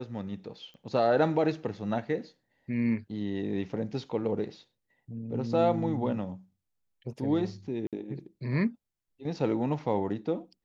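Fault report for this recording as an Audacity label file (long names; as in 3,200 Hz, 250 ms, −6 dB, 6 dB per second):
0.740000	0.740000	click −39 dBFS
7.870000	7.930000	drop-out 57 ms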